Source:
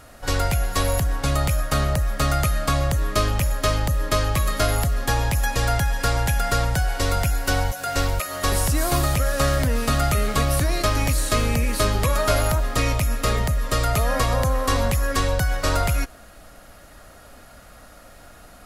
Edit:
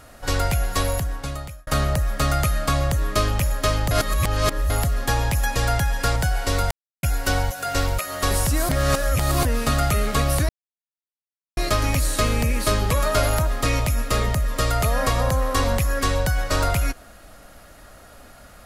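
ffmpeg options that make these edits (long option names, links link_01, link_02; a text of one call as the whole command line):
ffmpeg -i in.wav -filter_complex "[0:a]asplit=9[link_01][link_02][link_03][link_04][link_05][link_06][link_07][link_08][link_09];[link_01]atrim=end=1.67,asetpts=PTS-STARTPTS,afade=type=out:start_time=0.75:duration=0.92[link_10];[link_02]atrim=start=1.67:end=3.912,asetpts=PTS-STARTPTS,afade=type=in:duration=0.004:curve=hsin[link_11];[link_03]atrim=start=3.908:end=4.702,asetpts=PTS-STARTPTS,areverse[link_12];[link_04]atrim=start=4.698:end=6.162[link_13];[link_05]atrim=start=6.688:end=7.24,asetpts=PTS-STARTPTS,afade=type=out:start_time=0.548:duration=0.004:curve=hsin,apad=pad_dur=0.32[link_14];[link_06]atrim=start=7.24:end=8.902,asetpts=PTS-STARTPTS,afade=type=in:duration=0.004:curve=hsin[link_15];[link_07]atrim=start=8.898:end=9.662,asetpts=PTS-STARTPTS,areverse[link_16];[link_08]atrim=start=9.658:end=10.7,asetpts=PTS-STARTPTS,afade=type=out:start_time=1.038:duration=0.004:curve=hsin,apad=pad_dur=1.08[link_17];[link_09]atrim=start=10.7,asetpts=PTS-STARTPTS,afade=type=in:duration=0.004:curve=hsin[link_18];[link_10][link_11]concat=n=2:v=0:a=1[link_19];[link_19][link_12]acrossfade=duration=0.004:curve1=hsin:curve2=hsin[link_20];[link_20][link_13]acrossfade=duration=0.004:curve1=hsin:curve2=hsin[link_21];[link_14][link_15]concat=n=2:v=0:a=1[link_22];[link_21][link_22]acrossfade=duration=0.004:curve1=hsin:curve2=hsin[link_23];[link_23][link_16]acrossfade=duration=0.004:curve1=hsin:curve2=hsin[link_24];[link_17][link_18]concat=n=2:v=0:a=1[link_25];[link_24][link_25]acrossfade=duration=0.004:curve1=hsin:curve2=hsin" out.wav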